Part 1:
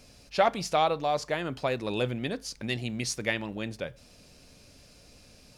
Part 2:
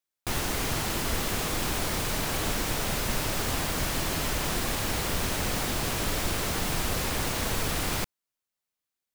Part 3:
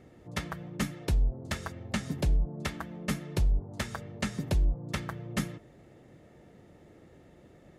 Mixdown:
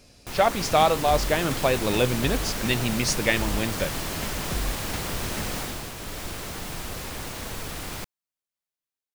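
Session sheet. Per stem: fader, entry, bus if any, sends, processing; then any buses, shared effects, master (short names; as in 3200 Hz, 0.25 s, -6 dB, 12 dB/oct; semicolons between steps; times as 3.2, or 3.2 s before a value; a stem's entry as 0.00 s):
+0.5 dB, 0.00 s, no send, dry
5.59 s -1.5 dB -> 5.94 s -11.5 dB, 0.00 s, no send, auto duck -6 dB, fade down 0.20 s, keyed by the first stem
-11.0 dB, 0.00 s, no send, dry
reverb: off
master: AGC gain up to 6 dB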